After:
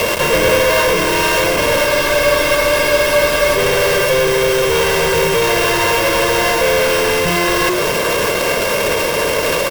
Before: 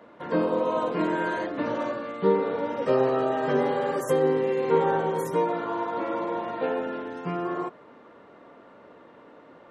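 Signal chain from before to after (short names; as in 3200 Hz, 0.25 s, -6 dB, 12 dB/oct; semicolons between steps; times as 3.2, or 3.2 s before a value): sample sorter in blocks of 16 samples; notches 60/120/180/240/300/360 Hz; reverse; compressor, threshold -35 dBFS, peak gain reduction 17.5 dB; reverse; fuzz box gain 51 dB, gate -58 dBFS; comb 1.9 ms, depth 71%; bit-crush 4-bit; on a send: echo 0.609 s -14 dB; on the sum: maximiser +12.5 dB; spectral freeze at 1.88, 1.68 s; gain -7 dB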